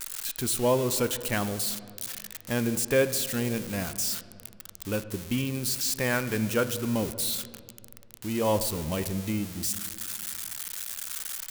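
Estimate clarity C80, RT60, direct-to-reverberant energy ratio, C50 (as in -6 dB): 14.5 dB, 2.4 s, 11.5 dB, 13.5 dB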